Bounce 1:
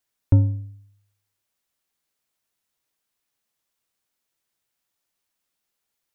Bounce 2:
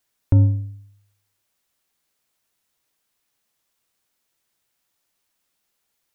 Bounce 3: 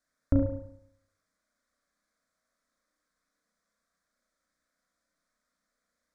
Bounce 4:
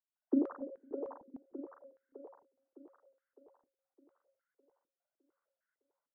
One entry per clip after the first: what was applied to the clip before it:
limiter -13 dBFS, peak gain reduction 6.5 dB; gain +5.5 dB
air absorption 80 m; fixed phaser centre 570 Hz, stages 8; reverb RT60 0.75 s, pre-delay 33 ms, DRR 1 dB
sine-wave speech; on a send: split-band echo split 340 Hz, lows 0.251 s, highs 0.609 s, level -4 dB; on the sum: stepped band-pass 6.6 Hz 260–1600 Hz

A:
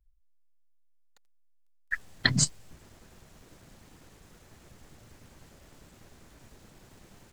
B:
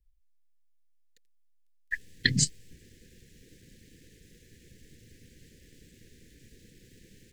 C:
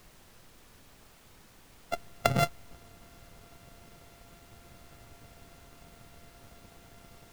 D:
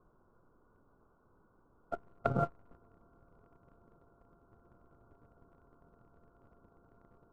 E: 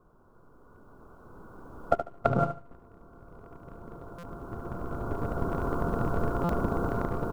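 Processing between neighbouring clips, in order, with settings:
Chebyshev band-stop 500–1700 Hz, order 4
sample sorter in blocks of 64 samples; high shelf 3800 Hz -7.5 dB; added noise pink -57 dBFS
rippled Chebyshev low-pass 1500 Hz, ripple 6 dB; sample leveller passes 1; gain -3.5 dB
recorder AGC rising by 9.3 dB/s; feedback echo 73 ms, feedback 21%, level -9 dB; stuck buffer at 4.18/6.44, samples 256, times 8; gain +5.5 dB

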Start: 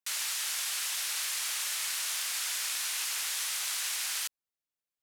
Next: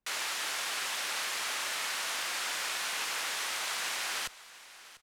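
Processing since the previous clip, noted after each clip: tilt -4.5 dB/oct; feedback echo 0.696 s, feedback 22%, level -17.5 dB; gain +8 dB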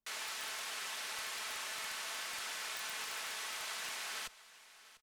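comb 4.6 ms, depth 37%; wrapped overs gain 23 dB; gain -8 dB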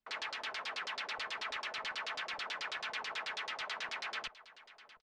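high shelf 7100 Hz -5 dB; LFO low-pass saw down 9.2 Hz 450–5300 Hz; gain +1 dB

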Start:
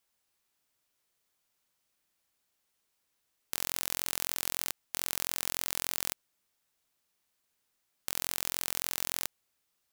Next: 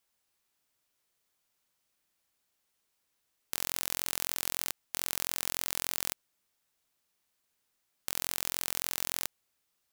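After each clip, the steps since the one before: nothing audible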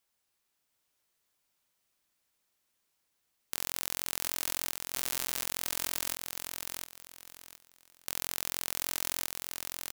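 feedback echo 0.716 s, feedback 26%, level -4.5 dB; gain -1 dB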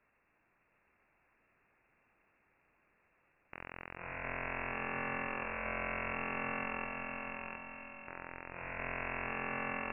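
diffused feedback echo 0.561 s, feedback 49%, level -11 dB; wavefolder -13.5 dBFS; inverted band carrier 2700 Hz; gain +13 dB

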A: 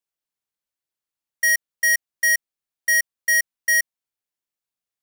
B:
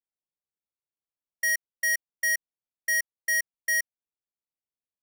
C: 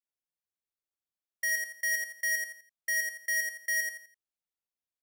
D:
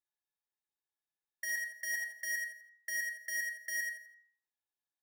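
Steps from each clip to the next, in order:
Wiener smoothing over 25 samples; gain -5.5 dB
feedback echo 84 ms, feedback 32%, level -4.5 dB; gain -5 dB
small resonant body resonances 870/1700/3700 Hz, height 16 dB, ringing for 65 ms; on a send at -2 dB: reverb RT60 0.50 s, pre-delay 3 ms; on the sum: gain -7 dB

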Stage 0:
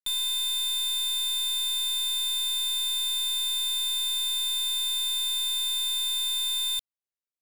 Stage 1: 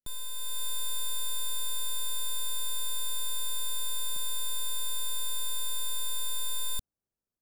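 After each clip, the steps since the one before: band shelf 2800 Hz -10 dB 1.2 oct; AGC gain up to 6 dB; tilt shelf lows +9.5 dB, about 650 Hz; gain +1 dB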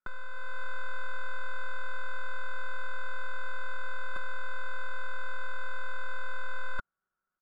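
spectral whitening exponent 0.6; synth low-pass 1400 Hz, resonance Q 14; comb 5.4 ms, depth 45%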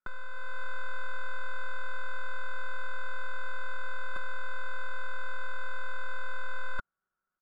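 nothing audible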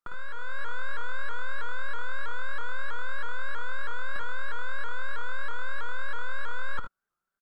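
on a send: tapped delay 51/71 ms -7/-9 dB; on the sum: shaped vibrato saw up 3.1 Hz, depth 160 cents

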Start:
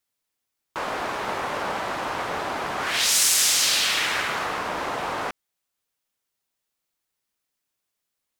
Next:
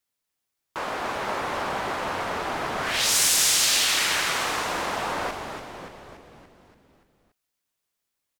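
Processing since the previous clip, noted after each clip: frequency-shifting echo 0.287 s, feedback 57%, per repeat -110 Hz, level -6.5 dB; gain -1.5 dB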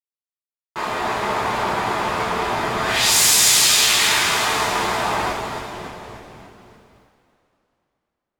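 expander -57 dBFS; two-slope reverb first 0.33 s, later 3 s, from -18 dB, DRR -6.5 dB; gain -1 dB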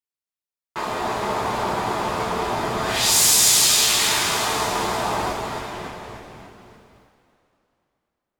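dynamic EQ 2000 Hz, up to -6 dB, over -31 dBFS, Q 0.8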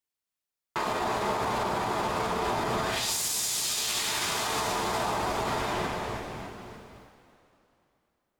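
compressor, threshold -26 dBFS, peak gain reduction 13 dB; limiter -23 dBFS, peak gain reduction 7.5 dB; gain +3 dB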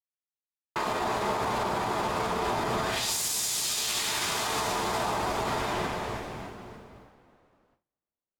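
gate with hold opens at -57 dBFS; mismatched tape noise reduction decoder only

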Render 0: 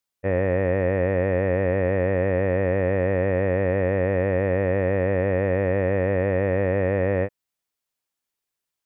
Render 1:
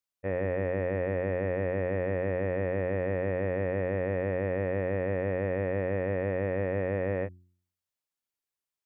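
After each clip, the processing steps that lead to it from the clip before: de-hum 89.84 Hz, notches 4; gain -7.5 dB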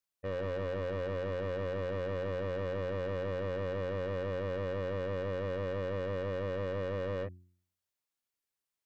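soft clip -31.5 dBFS, distortion -8 dB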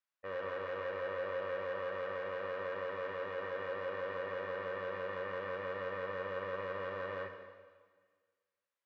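band-pass 1400 Hz, Q 1; plate-style reverb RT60 1.6 s, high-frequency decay 1×, DRR 3 dB; gain +2 dB

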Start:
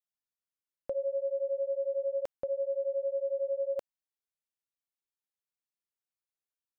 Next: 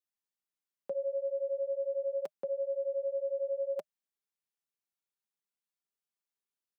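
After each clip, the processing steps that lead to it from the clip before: Chebyshev high-pass 160 Hz, order 4; notch 610 Hz, Q 12; comb 5 ms, depth 44%; gain -1.5 dB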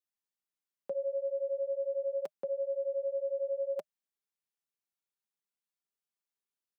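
nothing audible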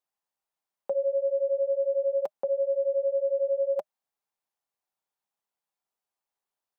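bell 800 Hz +12.5 dB 1.3 oct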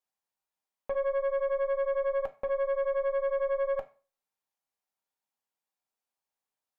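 tube stage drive 26 dB, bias 0.55; on a send at -6.5 dB: reverb RT60 0.35 s, pre-delay 3 ms

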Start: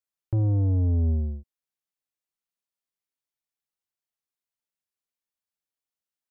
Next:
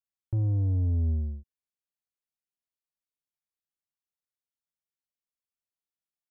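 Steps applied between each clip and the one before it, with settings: tone controls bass +6 dB, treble 0 dB; gain -9 dB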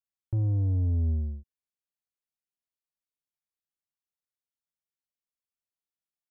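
nothing audible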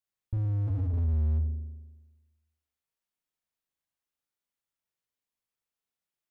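spring tank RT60 1.2 s, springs 39 ms, chirp 60 ms, DRR 0.5 dB; slew limiter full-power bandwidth 4 Hz; gain +1.5 dB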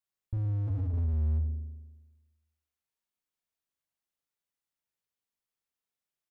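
echo 0.105 s -21 dB; gain -2 dB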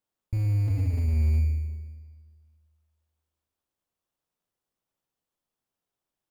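in parallel at -3 dB: sample-and-hold 19×; on the sum: Schroeder reverb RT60 1.8 s, combs from 30 ms, DRR 11 dB

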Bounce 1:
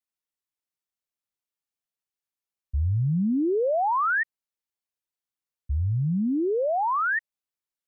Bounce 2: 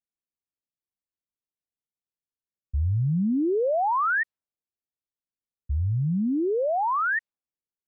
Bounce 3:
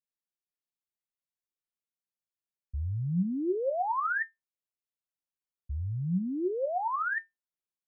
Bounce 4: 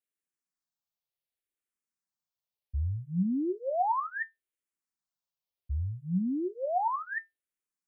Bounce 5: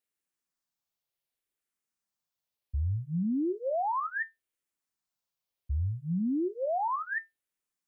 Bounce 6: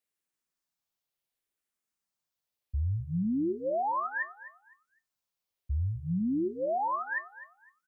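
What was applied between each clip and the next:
low-pass opened by the level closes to 410 Hz, open at -22.5 dBFS
resonator 180 Hz, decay 0.16 s, harmonics all, mix 70%
endless phaser -0.68 Hz; gain +3 dB
limiter -28.5 dBFS, peak gain reduction 8.5 dB; gain +3 dB
feedback echo 0.254 s, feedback 24%, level -15 dB

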